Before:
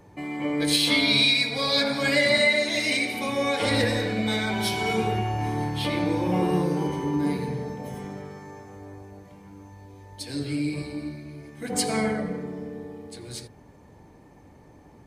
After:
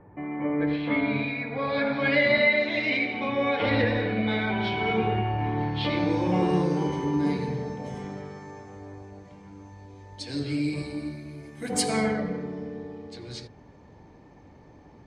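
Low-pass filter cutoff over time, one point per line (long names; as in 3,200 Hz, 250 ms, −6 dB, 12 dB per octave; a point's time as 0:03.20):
low-pass filter 24 dB per octave
0:01.49 1,900 Hz
0:02.11 3,200 Hz
0:05.53 3,200 Hz
0:06.25 7,100 Hz
0:10.51 7,100 Hz
0:11.20 12,000 Hz
0:11.79 12,000 Hz
0:12.21 5,900 Hz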